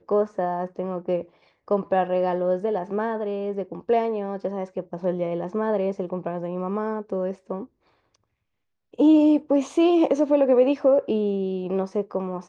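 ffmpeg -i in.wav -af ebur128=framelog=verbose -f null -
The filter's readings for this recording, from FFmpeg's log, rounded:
Integrated loudness:
  I:         -23.8 LUFS
  Threshold: -34.2 LUFS
Loudness range:
  LRA:         8.1 LU
  Threshold: -44.4 LUFS
  LRA low:   -28.5 LUFS
  LRA high:  -20.4 LUFS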